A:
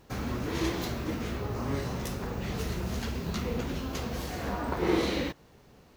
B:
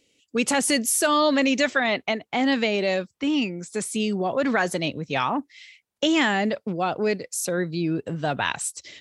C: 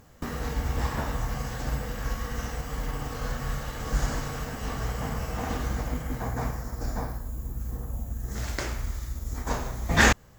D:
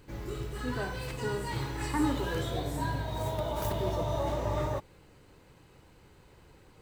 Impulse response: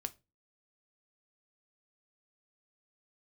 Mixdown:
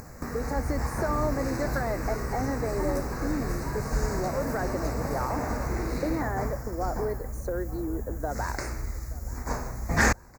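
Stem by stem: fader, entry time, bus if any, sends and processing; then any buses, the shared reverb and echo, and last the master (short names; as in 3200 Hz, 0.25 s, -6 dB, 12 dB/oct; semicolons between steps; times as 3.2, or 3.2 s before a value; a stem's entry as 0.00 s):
-2.5 dB, 0.90 s, no send, no echo send, overloaded stage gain 29.5 dB
0.0 dB, 0.00 s, no send, echo send -20 dB, running mean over 17 samples; compressor 3:1, threshold -28 dBFS, peak gain reduction 7.5 dB; HPF 290 Hz 24 dB/oct
-1.5 dB, 0.00 s, no send, echo send -18.5 dB, upward compressor, threshold -31 dBFS
-6.0 dB, 0.85 s, no send, no echo send, dry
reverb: off
echo: feedback echo 0.876 s, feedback 47%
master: Butterworth band-stop 3200 Hz, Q 1.5; soft clip -10.5 dBFS, distortion -27 dB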